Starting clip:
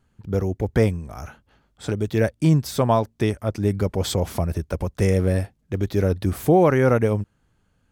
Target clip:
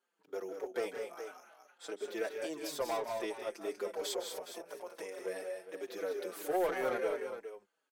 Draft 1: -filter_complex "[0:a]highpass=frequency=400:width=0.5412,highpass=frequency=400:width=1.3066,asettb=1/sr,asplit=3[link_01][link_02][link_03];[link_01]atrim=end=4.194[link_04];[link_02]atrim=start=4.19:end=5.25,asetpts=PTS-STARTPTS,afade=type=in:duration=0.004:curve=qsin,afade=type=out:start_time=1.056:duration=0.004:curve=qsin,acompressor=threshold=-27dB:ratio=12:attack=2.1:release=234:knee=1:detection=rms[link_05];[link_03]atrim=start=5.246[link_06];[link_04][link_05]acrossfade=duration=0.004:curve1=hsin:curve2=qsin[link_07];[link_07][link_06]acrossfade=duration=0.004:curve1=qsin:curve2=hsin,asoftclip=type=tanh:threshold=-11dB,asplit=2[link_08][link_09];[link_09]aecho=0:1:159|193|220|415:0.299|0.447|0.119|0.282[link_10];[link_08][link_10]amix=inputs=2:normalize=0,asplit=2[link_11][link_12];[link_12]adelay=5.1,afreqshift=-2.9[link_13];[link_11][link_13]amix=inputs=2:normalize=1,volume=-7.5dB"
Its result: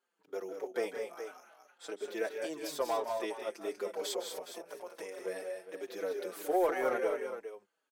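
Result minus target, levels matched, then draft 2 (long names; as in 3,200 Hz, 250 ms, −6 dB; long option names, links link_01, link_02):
soft clipping: distortion −9 dB
-filter_complex "[0:a]highpass=frequency=400:width=0.5412,highpass=frequency=400:width=1.3066,asettb=1/sr,asplit=3[link_01][link_02][link_03];[link_01]atrim=end=4.194[link_04];[link_02]atrim=start=4.19:end=5.25,asetpts=PTS-STARTPTS,afade=type=in:duration=0.004:curve=qsin,afade=type=out:start_time=1.056:duration=0.004:curve=qsin,acompressor=threshold=-27dB:ratio=12:attack=2.1:release=234:knee=1:detection=rms[link_05];[link_03]atrim=start=5.246[link_06];[link_04][link_05]acrossfade=duration=0.004:curve1=hsin:curve2=qsin[link_07];[link_07][link_06]acrossfade=duration=0.004:curve1=qsin:curve2=hsin,asoftclip=type=tanh:threshold=-18dB,asplit=2[link_08][link_09];[link_09]aecho=0:1:159|193|220|415:0.299|0.447|0.119|0.282[link_10];[link_08][link_10]amix=inputs=2:normalize=0,asplit=2[link_11][link_12];[link_12]adelay=5.1,afreqshift=-2.9[link_13];[link_11][link_13]amix=inputs=2:normalize=1,volume=-7.5dB"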